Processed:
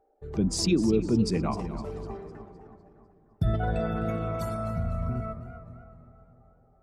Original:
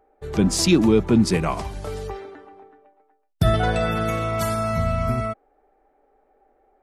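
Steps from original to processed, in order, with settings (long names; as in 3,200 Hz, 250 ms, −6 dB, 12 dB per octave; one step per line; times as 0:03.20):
spectral envelope exaggerated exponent 1.5
bucket-brigade delay 304 ms, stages 4,096, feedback 55%, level −13 dB
feedback echo with a swinging delay time 253 ms, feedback 46%, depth 140 cents, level −14 dB
level −7 dB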